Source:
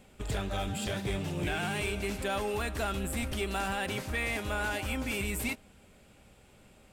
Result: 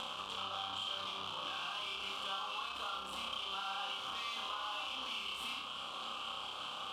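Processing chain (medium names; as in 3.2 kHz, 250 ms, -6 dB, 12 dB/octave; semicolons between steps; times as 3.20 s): reverberation, pre-delay 4 ms, DRR 3.5 dB; in parallel at -6 dB: fuzz box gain 54 dB, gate -58 dBFS; on the sum: two resonant band-passes 1.9 kHz, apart 1.4 oct; compression 4:1, threshold -57 dBFS, peak gain reduction 26 dB; on a send: flutter echo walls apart 5.3 m, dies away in 0.58 s; on the sum: trim +10.5 dB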